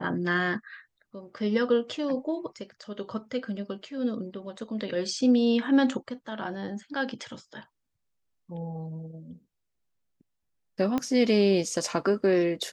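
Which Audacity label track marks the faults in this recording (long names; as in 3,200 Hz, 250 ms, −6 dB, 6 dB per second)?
10.980000	10.980000	click −15 dBFS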